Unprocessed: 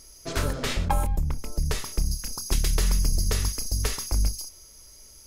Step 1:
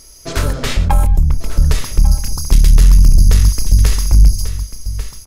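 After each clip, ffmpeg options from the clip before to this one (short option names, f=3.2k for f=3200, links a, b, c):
-af "asubboost=boost=4:cutoff=190,aecho=1:1:1143:0.224,asoftclip=type=tanh:threshold=-9dB,volume=8dB"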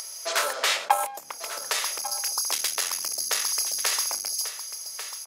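-af "highpass=f=600:w=0.5412,highpass=f=600:w=1.3066,acompressor=mode=upward:threshold=-32dB:ratio=2.5"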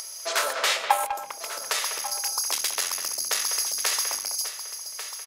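-filter_complex "[0:a]asplit=2[a][b];[b]adelay=200,highpass=300,lowpass=3.4k,asoftclip=type=hard:threshold=-14.5dB,volume=-8dB[c];[a][c]amix=inputs=2:normalize=0"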